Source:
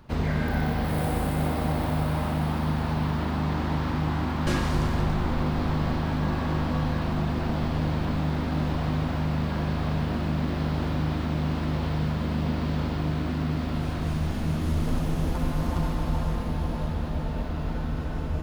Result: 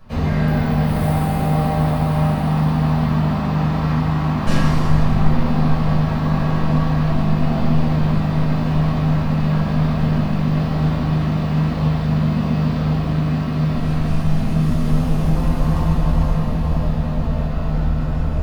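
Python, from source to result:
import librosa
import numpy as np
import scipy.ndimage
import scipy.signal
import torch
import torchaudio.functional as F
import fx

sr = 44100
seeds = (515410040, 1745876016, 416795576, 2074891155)

y = fx.room_shoebox(x, sr, seeds[0], volume_m3=450.0, walls='furnished', distance_m=5.9)
y = y * 10.0 ** (-3.5 / 20.0)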